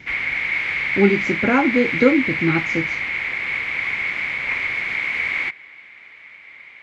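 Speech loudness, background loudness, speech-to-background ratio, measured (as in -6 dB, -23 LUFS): -20.0 LUFS, -21.5 LUFS, 1.5 dB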